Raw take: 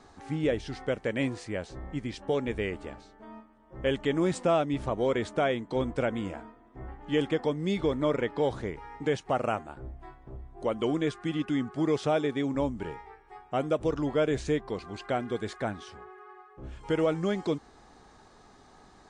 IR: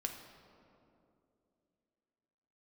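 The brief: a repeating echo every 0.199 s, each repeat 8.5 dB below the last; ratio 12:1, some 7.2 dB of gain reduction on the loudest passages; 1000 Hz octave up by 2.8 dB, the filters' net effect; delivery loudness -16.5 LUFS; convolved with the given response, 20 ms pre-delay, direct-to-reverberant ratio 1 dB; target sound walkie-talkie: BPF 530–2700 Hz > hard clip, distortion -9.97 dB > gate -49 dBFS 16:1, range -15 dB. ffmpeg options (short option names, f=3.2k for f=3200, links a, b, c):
-filter_complex "[0:a]equalizer=f=1k:t=o:g=5,acompressor=threshold=-27dB:ratio=12,aecho=1:1:199|398|597|796:0.376|0.143|0.0543|0.0206,asplit=2[a][b];[1:a]atrim=start_sample=2205,adelay=20[c];[b][c]afir=irnorm=-1:irlink=0,volume=-1dB[d];[a][d]amix=inputs=2:normalize=0,highpass=530,lowpass=2.7k,asoftclip=type=hard:threshold=-31dB,agate=range=-15dB:threshold=-49dB:ratio=16,volume=21.5dB"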